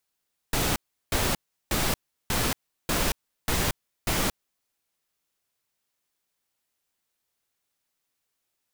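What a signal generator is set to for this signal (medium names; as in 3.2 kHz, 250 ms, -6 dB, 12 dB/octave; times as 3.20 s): noise bursts pink, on 0.23 s, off 0.36 s, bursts 7, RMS -25 dBFS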